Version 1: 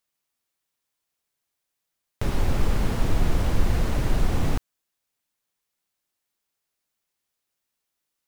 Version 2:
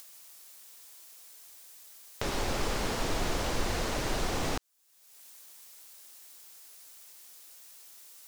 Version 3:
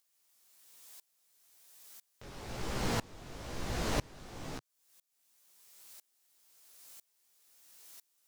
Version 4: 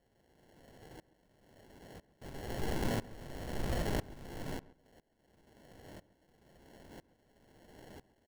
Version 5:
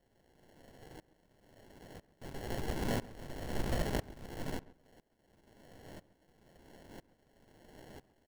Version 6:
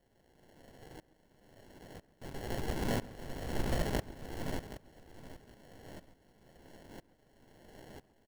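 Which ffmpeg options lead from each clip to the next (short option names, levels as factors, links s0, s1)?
-filter_complex "[0:a]acrossover=split=7300[s0][s1];[s1]acompressor=threshold=0.00158:ratio=4:attack=1:release=60[s2];[s0][s2]amix=inputs=2:normalize=0,bass=f=250:g=-13,treble=f=4000:g=8,acompressor=mode=upward:threshold=0.0224:ratio=2.5"
-af "equalizer=f=130:w=0.96:g=6.5,flanger=delay=15:depth=6.4:speed=1.1,aeval=exprs='val(0)*pow(10,-27*if(lt(mod(-1*n/s,1),2*abs(-1)/1000),1-mod(-1*n/s,1)/(2*abs(-1)/1000),(mod(-1*n/s,1)-2*abs(-1)/1000)/(1-2*abs(-1)/1000))/20)':c=same,volume=1.58"
-filter_complex "[0:a]alimiter=level_in=1.06:limit=0.0631:level=0:latency=1:release=354,volume=0.944,acrusher=samples=36:mix=1:aa=0.000001,asplit=2[s0][s1];[s1]adelay=136,lowpass=f=1800:p=1,volume=0.112,asplit=2[s2][s3];[s3]adelay=136,lowpass=f=1800:p=1,volume=0.21[s4];[s0][s2][s4]amix=inputs=3:normalize=0,volume=1.26"
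-af "aeval=exprs='if(lt(val(0),0),0.447*val(0),val(0))':c=same,volume=1.41"
-af "aecho=1:1:773|1546|2319:0.211|0.0507|0.0122,volume=1.12"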